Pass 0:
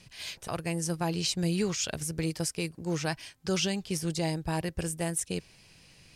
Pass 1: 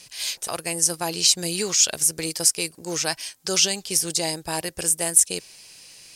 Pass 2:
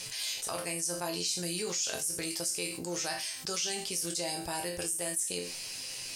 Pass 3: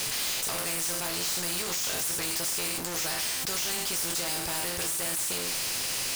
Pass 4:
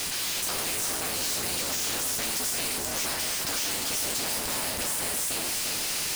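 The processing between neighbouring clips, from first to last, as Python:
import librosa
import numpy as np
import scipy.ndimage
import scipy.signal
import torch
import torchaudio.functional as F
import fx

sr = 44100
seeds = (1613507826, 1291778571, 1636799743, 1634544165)

y1 = fx.bass_treble(x, sr, bass_db=-13, treble_db=12)
y1 = y1 * 10.0 ** (5.0 / 20.0)
y2 = fx.resonator_bank(y1, sr, root=41, chord='major', decay_s=0.28)
y2 = fx.env_flatten(y2, sr, amount_pct=70)
y2 = y2 * 10.0 ** (-6.0 / 20.0)
y3 = fx.leveller(y2, sr, passes=5)
y3 = fx.spectral_comp(y3, sr, ratio=2.0)
y4 = fx.cycle_switch(y3, sr, every=3, mode='inverted')
y4 = y4 + 10.0 ** (-5.0 / 20.0) * np.pad(y4, (int(352 * sr / 1000.0), 0))[:len(y4)]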